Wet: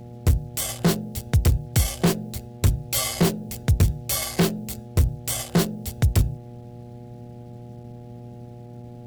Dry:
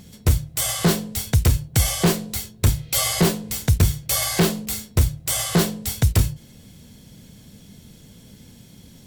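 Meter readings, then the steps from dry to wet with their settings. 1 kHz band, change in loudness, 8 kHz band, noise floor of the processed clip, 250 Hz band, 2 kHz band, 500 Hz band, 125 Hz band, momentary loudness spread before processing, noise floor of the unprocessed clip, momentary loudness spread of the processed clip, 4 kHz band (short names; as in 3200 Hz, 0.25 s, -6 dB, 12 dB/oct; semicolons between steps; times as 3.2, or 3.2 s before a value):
-3.5 dB, -2.5 dB, -5.0 dB, -41 dBFS, -1.5 dB, -4.5 dB, -2.0 dB, -1.5 dB, 5 LU, -48 dBFS, 19 LU, -5.0 dB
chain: Wiener smoothing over 41 samples; bit-crush 10-bit; buzz 120 Hz, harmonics 7, -39 dBFS -6 dB/oct; gain -1.5 dB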